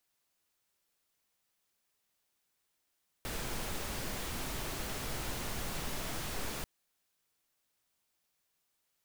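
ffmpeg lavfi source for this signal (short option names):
-f lavfi -i "anoisesrc=c=pink:a=0.0646:d=3.39:r=44100:seed=1"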